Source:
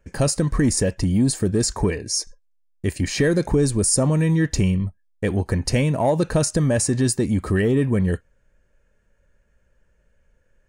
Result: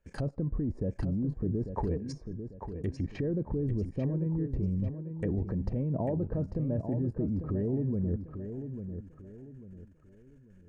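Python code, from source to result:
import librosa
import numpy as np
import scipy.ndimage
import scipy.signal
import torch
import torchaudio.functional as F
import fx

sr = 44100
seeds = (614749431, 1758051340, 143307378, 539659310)

p1 = fx.env_lowpass_down(x, sr, base_hz=440.0, full_db=-18.5)
p2 = fx.level_steps(p1, sr, step_db=15)
y = p2 + fx.echo_feedback(p2, sr, ms=845, feedback_pct=34, wet_db=-8.5, dry=0)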